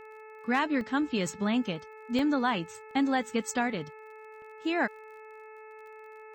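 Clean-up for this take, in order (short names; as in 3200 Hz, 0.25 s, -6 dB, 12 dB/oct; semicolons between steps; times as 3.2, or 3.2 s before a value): clip repair -17 dBFS; de-click; de-hum 434.5 Hz, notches 6; interpolate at 0.81/1.27/2.19/2.91/3.5/4.42, 1.2 ms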